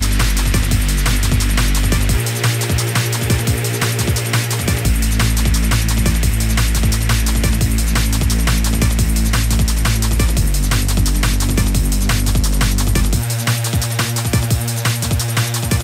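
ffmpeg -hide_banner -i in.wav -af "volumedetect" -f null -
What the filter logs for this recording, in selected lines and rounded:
mean_volume: -14.8 dB
max_volume: -5.6 dB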